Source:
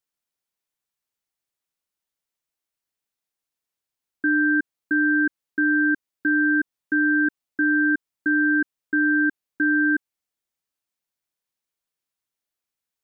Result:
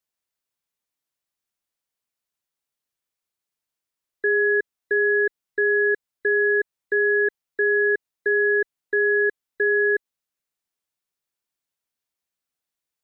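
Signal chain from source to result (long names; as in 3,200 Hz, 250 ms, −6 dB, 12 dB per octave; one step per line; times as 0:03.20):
frequency inversion band by band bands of 2,000 Hz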